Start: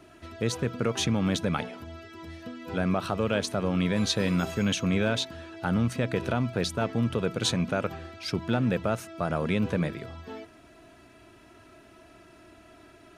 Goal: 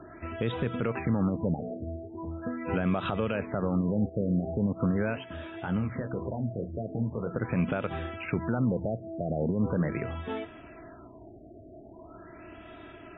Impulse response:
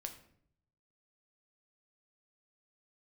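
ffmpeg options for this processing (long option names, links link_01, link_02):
-filter_complex "[0:a]alimiter=limit=-24dB:level=0:latency=1:release=110,asplit=3[link_01][link_02][link_03];[link_01]afade=type=out:start_time=5.13:duration=0.02[link_04];[link_02]flanger=delay=9.6:depth=9.9:regen=-34:speed=1.9:shape=sinusoidal,afade=type=in:start_time=5.13:duration=0.02,afade=type=out:start_time=7.33:duration=0.02[link_05];[link_03]afade=type=in:start_time=7.33:duration=0.02[link_06];[link_04][link_05][link_06]amix=inputs=3:normalize=0,afftfilt=real='re*lt(b*sr/1024,710*pow(3900/710,0.5+0.5*sin(2*PI*0.41*pts/sr)))':imag='im*lt(b*sr/1024,710*pow(3900/710,0.5+0.5*sin(2*PI*0.41*pts/sr)))':win_size=1024:overlap=0.75,volume=6dB"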